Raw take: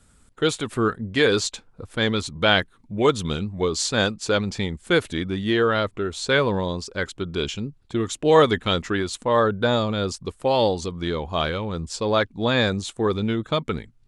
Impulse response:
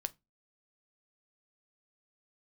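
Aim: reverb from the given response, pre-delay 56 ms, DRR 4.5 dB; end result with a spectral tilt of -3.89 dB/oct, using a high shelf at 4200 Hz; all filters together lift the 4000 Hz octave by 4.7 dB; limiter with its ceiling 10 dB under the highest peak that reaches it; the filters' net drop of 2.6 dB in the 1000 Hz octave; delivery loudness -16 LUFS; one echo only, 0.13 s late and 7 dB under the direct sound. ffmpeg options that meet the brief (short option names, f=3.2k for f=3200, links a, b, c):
-filter_complex "[0:a]equalizer=f=1k:t=o:g=-4,equalizer=f=4k:t=o:g=3.5,highshelf=f=4.2k:g=5,alimiter=limit=-12.5dB:level=0:latency=1,aecho=1:1:130:0.447,asplit=2[a][b];[1:a]atrim=start_sample=2205,adelay=56[c];[b][c]afir=irnorm=-1:irlink=0,volume=-3.5dB[d];[a][d]amix=inputs=2:normalize=0,volume=6.5dB"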